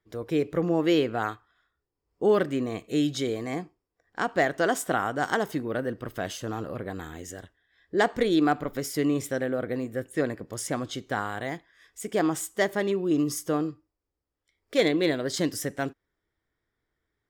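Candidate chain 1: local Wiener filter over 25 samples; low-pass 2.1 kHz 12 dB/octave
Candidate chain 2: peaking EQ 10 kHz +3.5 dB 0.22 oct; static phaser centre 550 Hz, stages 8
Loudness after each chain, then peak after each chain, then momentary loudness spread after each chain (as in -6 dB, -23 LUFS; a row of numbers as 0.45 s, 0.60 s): -28.5 LUFS, -31.0 LUFS; -12.5 dBFS, -12.5 dBFS; 13 LU, 12 LU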